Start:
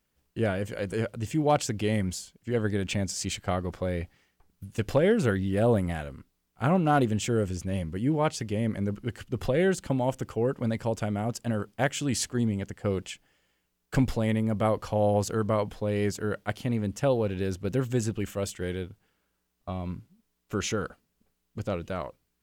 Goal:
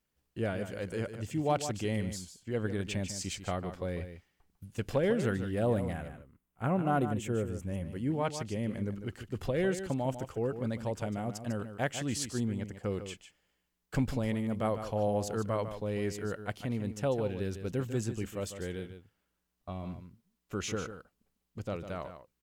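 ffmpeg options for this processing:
-filter_complex "[0:a]asettb=1/sr,asplit=3[a][b][c];[a]atrim=end=5.934[d];[b]atrim=start=5.93:end=7.85,asetpts=PTS-STARTPTS,afade=t=in:d=0.004:c=qsin,afade=t=out:st=1.916:d=0.004:c=qsin,equalizer=f=4.7k:t=o:w=1:g=-12.5[e];[c]atrim=start=7.846[f];[d][e]acrossfade=d=0.004:c1=hsin:c2=qsin[g];[g][f]acrossfade=d=0.004:c1=qsin:c2=hsin,asplit=2[h][i];[i]aecho=0:1:149:0.316[j];[h][j]amix=inputs=2:normalize=0,volume=-6dB"

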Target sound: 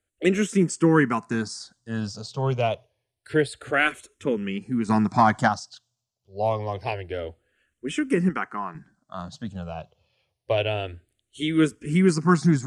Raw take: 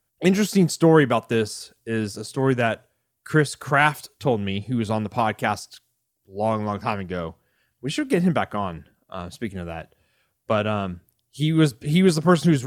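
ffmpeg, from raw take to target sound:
-filter_complex "[0:a]asplit=3[a][b][c];[a]afade=t=out:st=4.88:d=0.02[d];[b]acontrast=87,afade=t=in:st=4.88:d=0.02,afade=t=out:st=5.47:d=0.02[e];[c]afade=t=in:st=5.47:d=0.02[f];[d][e][f]amix=inputs=3:normalize=0,asettb=1/sr,asplit=3[g][h][i];[g]atrim=end=8.294[j];[h]atrim=start=8.29:end=8.75,asetpts=PTS-STARTPTS,afade=t=in:d=0.004:c=qsin,afade=t=out:st=0.456:d=0.004:c=qsin,bass=f=250:g=-12,treble=f=4k:g=-6[k];[i]atrim=start=8.746[l];[j][k]acrossfade=d=0.004:c1=hsin:c2=qsin[m];[m][l]acrossfade=d=0.004:c1=qsin:c2=hsin,lowpass=f=8.8k:w=0.5412,lowpass=f=8.8k:w=1.3066,asettb=1/sr,asplit=3[n][o][p];[n]atrim=end=10.574[q];[o]atrim=start=10.57:end=11.61,asetpts=PTS-STARTPTS,afade=t=in:d=0.004:c=qsin,afade=t=out:st=1.036:d=0.004:c=qsin,equalizer=f=3.1k:w=0.59:g=4[r];[p]atrim=start=11.606[s];[q][r]acrossfade=d=0.004:c1=hsin:c2=qsin[t];[t][s]acrossfade=d=0.004:c1=qsin:c2=hsin,asplit=2[u][v];[v]afreqshift=-0.27[w];[u][w]amix=inputs=2:normalize=1"

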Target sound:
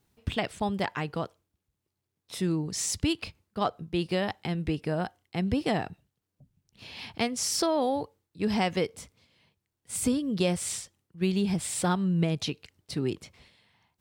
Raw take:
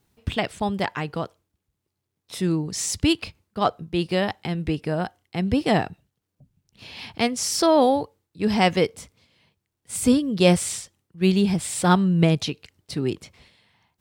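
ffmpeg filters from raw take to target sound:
-af "acompressor=threshold=-19dB:ratio=5,volume=-3.5dB"

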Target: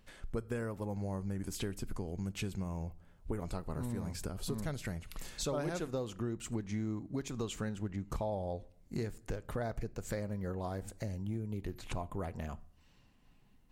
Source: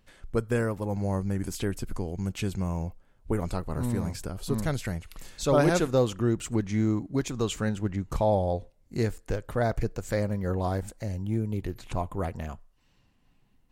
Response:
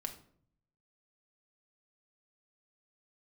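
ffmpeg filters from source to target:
-filter_complex "[0:a]acompressor=threshold=-36dB:ratio=4,asplit=2[a][b];[1:a]atrim=start_sample=2205[c];[b][c]afir=irnorm=-1:irlink=0,volume=-10dB[d];[a][d]amix=inputs=2:normalize=0,volume=-1.5dB"

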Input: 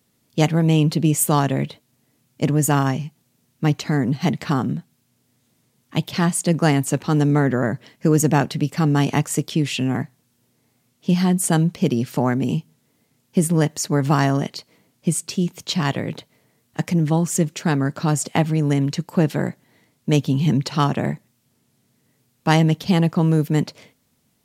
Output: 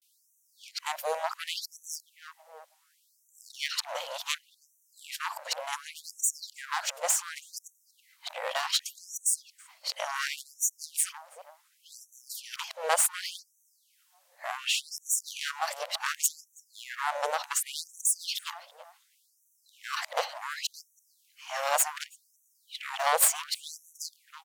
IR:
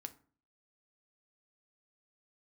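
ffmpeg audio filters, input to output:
-filter_complex "[0:a]areverse,adynamicequalizer=threshold=0.00794:dfrequency=2100:dqfactor=1.9:tfrequency=2100:tqfactor=1.9:attack=5:release=100:ratio=0.375:range=3.5:mode=cutabove:tftype=bell,aeval=exprs='clip(val(0),-1,0.0473)':c=same,asplit=2[a][b];[b]adelay=326,lowpass=f=1.5k:p=1,volume=-14.5dB,asplit=2[c][d];[d]adelay=326,lowpass=f=1.5k:p=1,volume=0.36,asplit=2[e][f];[f]adelay=326,lowpass=f=1.5k:p=1,volume=0.36[g];[c][e][g]amix=inputs=3:normalize=0[h];[a][h]amix=inputs=2:normalize=0,afftfilt=real='re*gte(b*sr/1024,470*pow(5800/470,0.5+0.5*sin(2*PI*0.68*pts/sr)))':imag='im*gte(b*sr/1024,470*pow(5800/470,0.5+0.5*sin(2*PI*0.68*pts/sr)))':win_size=1024:overlap=0.75,volume=1.5dB"

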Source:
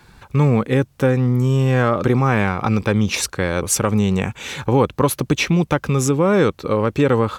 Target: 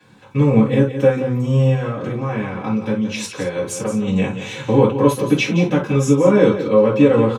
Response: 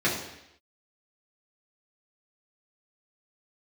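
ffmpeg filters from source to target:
-filter_complex "[0:a]asettb=1/sr,asplit=3[a][b][c];[a]atrim=end=1.684[d];[b]atrim=start=1.68:end=4.07,asetpts=PTS-STARTPTS,afade=t=in:d=0.004:c=qsin,afade=t=out:st=2.386:d=0.004:c=qsin,acompressor=threshold=-20dB:ratio=6[e];[c]atrim=start=4.066[f];[d][e]acrossfade=d=0.004:c1=hsin:c2=qsin[g];[g][f]acrossfade=d=0.004:c1=qsin:c2=hsin,aecho=1:1:173:0.299[h];[1:a]atrim=start_sample=2205,afade=t=out:st=0.16:d=0.01,atrim=end_sample=7497,asetrate=66150,aresample=44100[i];[h][i]afir=irnorm=-1:irlink=0,volume=-11dB"

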